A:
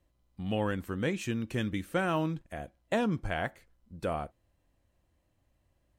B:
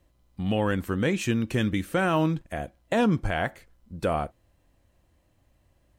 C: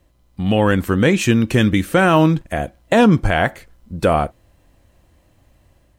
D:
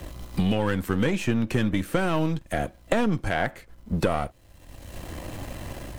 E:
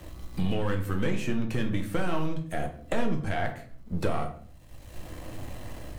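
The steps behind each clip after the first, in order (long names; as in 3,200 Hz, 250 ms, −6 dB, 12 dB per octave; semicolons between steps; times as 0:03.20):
brickwall limiter −21 dBFS, peak gain reduction 6 dB; level +7.5 dB
automatic gain control gain up to 4 dB; level +6.5 dB
gain on one half-wave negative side −7 dB; multiband upward and downward compressor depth 100%; level −6.5 dB
rectangular room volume 69 cubic metres, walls mixed, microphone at 0.5 metres; level −7 dB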